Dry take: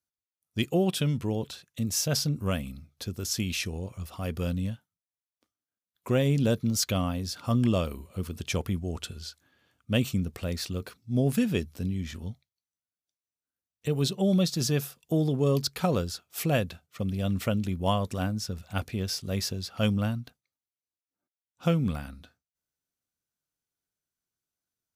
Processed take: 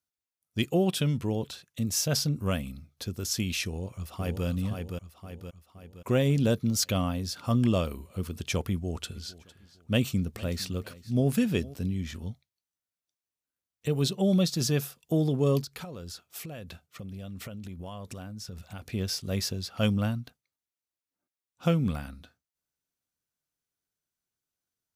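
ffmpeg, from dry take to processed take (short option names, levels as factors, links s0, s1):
-filter_complex "[0:a]asplit=2[s0][s1];[s1]afade=t=in:st=3.67:d=0.01,afade=t=out:st=4.46:d=0.01,aecho=0:1:520|1040|1560|2080|2600|3120:0.562341|0.281171|0.140585|0.0702927|0.0351463|0.0175732[s2];[s0][s2]amix=inputs=2:normalize=0,asplit=3[s3][s4][s5];[s3]afade=t=out:st=9.14:d=0.02[s6];[s4]aecho=1:1:456|912:0.106|0.0318,afade=t=in:st=9.14:d=0.02,afade=t=out:st=11.73:d=0.02[s7];[s5]afade=t=in:st=11.73:d=0.02[s8];[s6][s7][s8]amix=inputs=3:normalize=0,asettb=1/sr,asplit=3[s9][s10][s11];[s9]atrim=end=15.614[s12];[s10]atrim=start=15.61:end=18.91,asetpts=PTS-STARTPTS,afade=t=in:d=0.004:c=qsin,afade=t=out:st=3.296:d=0.004:c=qsin,acompressor=threshold=0.0158:ratio=16:attack=3.2:release=140:knee=1:detection=peak[s13];[s11]atrim=start=18.906[s14];[s12][s13]acrossfade=d=0.004:c1=hsin:c2=qsin[s15];[s15][s14]acrossfade=d=0.004:c1=qsin:c2=hsin"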